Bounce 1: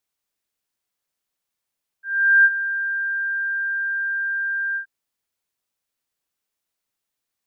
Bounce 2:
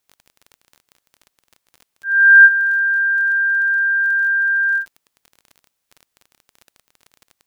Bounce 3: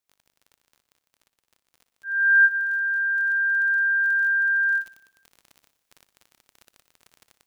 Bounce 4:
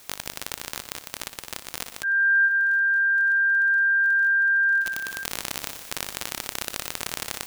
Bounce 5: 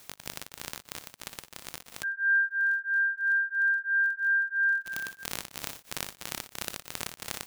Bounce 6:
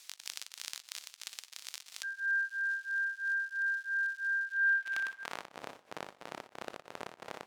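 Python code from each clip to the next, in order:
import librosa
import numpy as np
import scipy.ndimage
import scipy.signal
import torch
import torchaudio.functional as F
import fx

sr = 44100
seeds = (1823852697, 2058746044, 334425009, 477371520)

y1 = fx.dmg_crackle(x, sr, seeds[0], per_s=28.0, level_db=-38.0)
y1 = y1 * librosa.db_to_amplitude(7.5)
y2 = fx.rider(y1, sr, range_db=5, speed_s=2.0)
y2 = fx.echo_feedback(y2, sr, ms=60, feedback_pct=60, wet_db=-13.0)
y2 = y2 * librosa.db_to_amplitude(-5.5)
y3 = fx.env_flatten(y2, sr, amount_pct=70)
y3 = y3 * librosa.db_to_amplitude(-4.5)
y4 = fx.peak_eq(y3, sr, hz=150.0, db=4.0, octaves=1.2)
y4 = y4 * np.abs(np.cos(np.pi * 3.0 * np.arange(len(y4)) / sr))
y4 = y4 * librosa.db_to_amplitude(-3.5)
y5 = fx.dmg_crackle(y4, sr, seeds[1], per_s=420.0, level_db=-45.0)
y5 = fx.filter_sweep_bandpass(y5, sr, from_hz=4900.0, to_hz=610.0, start_s=4.4, end_s=5.59, q=0.89)
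y5 = y5 * librosa.db_to_amplitude(1.5)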